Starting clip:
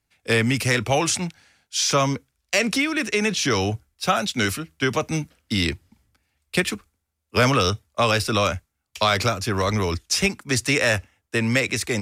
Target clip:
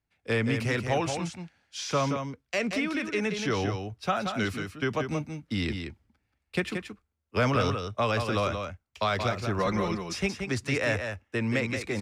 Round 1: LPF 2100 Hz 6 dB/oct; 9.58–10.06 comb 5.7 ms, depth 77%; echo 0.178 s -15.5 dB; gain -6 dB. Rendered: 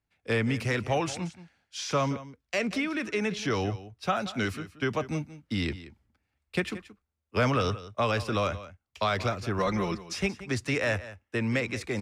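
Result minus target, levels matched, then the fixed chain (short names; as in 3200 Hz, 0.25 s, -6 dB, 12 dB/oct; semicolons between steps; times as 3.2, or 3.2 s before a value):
echo-to-direct -9 dB
LPF 2100 Hz 6 dB/oct; 9.58–10.06 comb 5.7 ms, depth 77%; echo 0.178 s -6.5 dB; gain -6 dB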